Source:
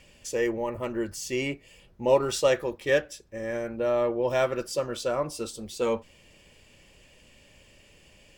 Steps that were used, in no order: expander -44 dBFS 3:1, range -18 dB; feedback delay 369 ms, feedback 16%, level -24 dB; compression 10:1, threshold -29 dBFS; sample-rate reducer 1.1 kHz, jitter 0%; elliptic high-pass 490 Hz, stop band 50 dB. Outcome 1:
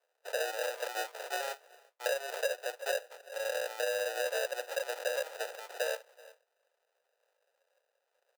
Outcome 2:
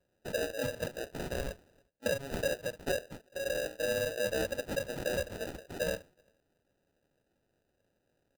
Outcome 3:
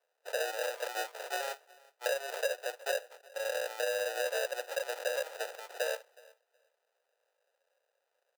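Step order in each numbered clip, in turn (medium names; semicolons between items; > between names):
sample-rate reducer > feedback delay > expander > elliptic high-pass > compression; elliptic high-pass > compression > feedback delay > sample-rate reducer > expander; sample-rate reducer > elliptic high-pass > compression > expander > feedback delay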